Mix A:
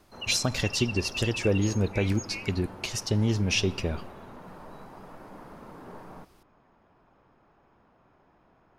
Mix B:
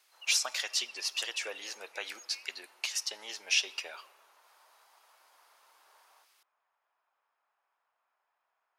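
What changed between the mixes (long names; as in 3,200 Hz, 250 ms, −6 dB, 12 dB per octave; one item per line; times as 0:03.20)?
background −11.5 dB
master: add Bessel high-pass filter 1,100 Hz, order 4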